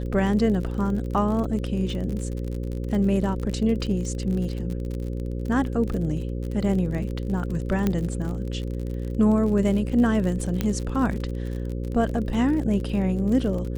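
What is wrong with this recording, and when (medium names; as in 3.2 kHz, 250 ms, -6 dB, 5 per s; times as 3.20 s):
buzz 60 Hz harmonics 9 -29 dBFS
crackle 46 per s -30 dBFS
7.87 s: pop -11 dBFS
10.61 s: pop -11 dBFS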